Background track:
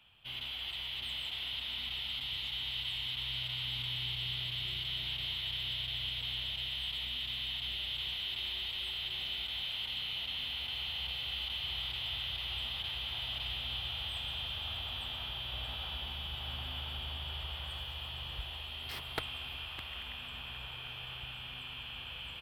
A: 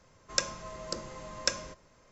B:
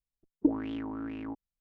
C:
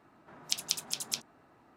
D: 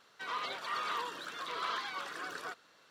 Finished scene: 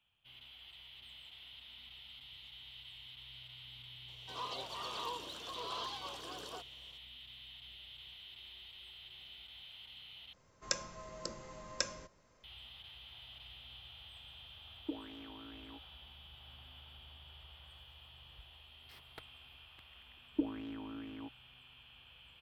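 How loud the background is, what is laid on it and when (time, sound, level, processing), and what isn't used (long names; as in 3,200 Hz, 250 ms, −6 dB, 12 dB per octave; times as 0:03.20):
background track −15 dB
0:04.08: mix in D −1 dB + flat-topped bell 1,700 Hz −14.5 dB 1.1 octaves
0:10.33: overwrite with A −6.5 dB
0:14.44: mix in B −11 dB + bass and treble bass −13 dB, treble +5 dB
0:19.94: mix in B −8.5 dB
not used: C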